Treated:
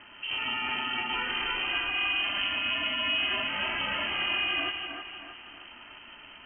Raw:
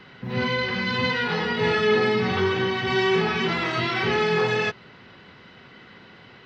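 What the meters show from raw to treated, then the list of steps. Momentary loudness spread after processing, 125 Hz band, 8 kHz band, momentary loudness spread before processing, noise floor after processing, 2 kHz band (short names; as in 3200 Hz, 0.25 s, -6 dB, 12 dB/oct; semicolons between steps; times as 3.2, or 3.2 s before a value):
19 LU, -22.0 dB, n/a, 5 LU, -49 dBFS, -4.0 dB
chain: limiter -22 dBFS, peak gain reduction 11 dB; ring modulator 190 Hz; echo with dull and thin repeats by turns 0.157 s, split 1000 Hz, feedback 66%, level -2 dB; inverted band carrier 3100 Hz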